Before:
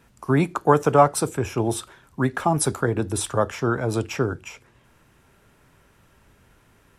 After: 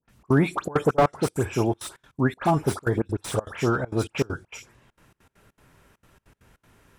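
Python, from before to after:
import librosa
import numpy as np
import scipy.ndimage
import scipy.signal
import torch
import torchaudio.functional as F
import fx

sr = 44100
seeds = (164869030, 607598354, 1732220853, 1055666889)

y = fx.dispersion(x, sr, late='highs', ms=92.0, hz=2300.0)
y = fx.step_gate(y, sr, bpm=199, pattern='.xx.xxxxx.xx.x', floor_db=-24.0, edge_ms=4.5)
y = fx.slew_limit(y, sr, full_power_hz=140.0)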